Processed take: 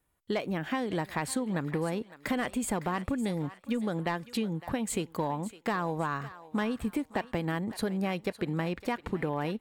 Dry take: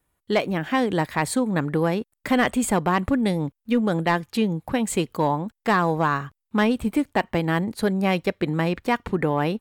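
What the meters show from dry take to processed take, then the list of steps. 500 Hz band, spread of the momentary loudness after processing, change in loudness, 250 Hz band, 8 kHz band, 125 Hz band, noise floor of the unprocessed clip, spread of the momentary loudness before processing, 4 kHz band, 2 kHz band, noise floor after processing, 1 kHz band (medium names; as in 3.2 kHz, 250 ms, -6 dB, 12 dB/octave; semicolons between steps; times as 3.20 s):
-9.5 dB, 3 LU, -9.0 dB, -9.0 dB, -6.0 dB, -8.5 dB, -81 dBFS, 4 LU, -8.5 dB, -10.0 dB, -59 dBFS, -10.0 dB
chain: compression, threshold -24 dBFS, peak gain reduction 8.5 dB; on a send: thinning echo 558 ms, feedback 42%, high-pass 710 Hz, level -14 dB; on the sum: trim -3.5 dB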